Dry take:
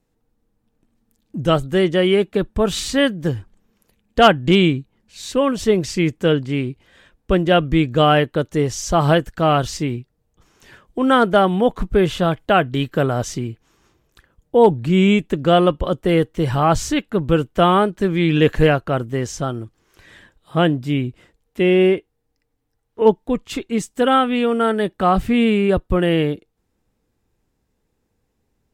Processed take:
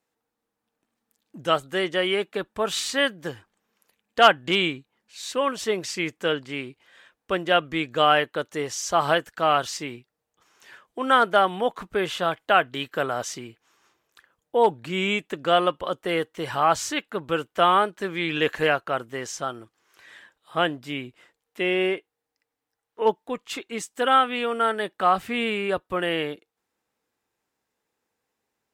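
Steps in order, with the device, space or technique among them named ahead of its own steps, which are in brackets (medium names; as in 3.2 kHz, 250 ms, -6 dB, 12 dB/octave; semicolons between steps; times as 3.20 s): filter by subtraction (in parallel: low-pass 1.2 kHz 12 dB/octave + polarity flip); on the sum: trim -3 dB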